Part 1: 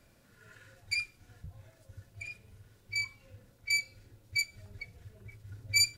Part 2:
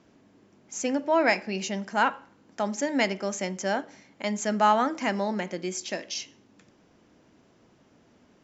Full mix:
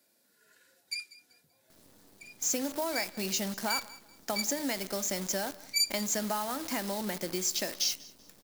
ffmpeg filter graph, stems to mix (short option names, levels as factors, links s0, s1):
-filter_complex "[0:a]highpass=f=220:w=0.5412,highpass=f=220:w=1.3066,bandreject=f=1200:w=6.9,volume=0.398,asplit=2[s0][s1];[s1]volume=0.119[s2];[1:a]acompressor=threshold=0.0316:ratio=12,acrusher=bits=8:dc=4:mix=0:aa=0.000001,adelay=1700,volume=1,asplit=2[s3][s4];[s4]volume=0.075[s5];[s2][s5]amix=inputs=2:normalize=0,aecho=0:1:192|384|576|768:1|0.3|0.09|0.027[s6];[s0][s3][s6]amix=inputs=3:normalize=0,aexciter=amount=1.6:drive=8.3:freq=3800"